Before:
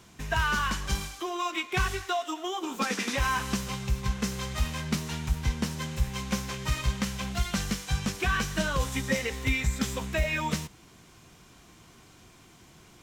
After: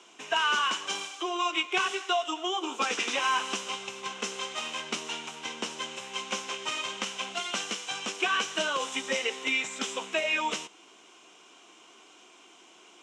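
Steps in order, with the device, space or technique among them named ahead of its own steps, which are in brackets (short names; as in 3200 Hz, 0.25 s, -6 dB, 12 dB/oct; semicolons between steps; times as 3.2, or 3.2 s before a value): phone speaker on a table (speaker cabinet 330–7900 Hz, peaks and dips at 530 Hz -3 dB, 1800 Hz -7 dB, 2900 Hz +7 dB, 4500 Hz -8 dB); gain +2.5 dB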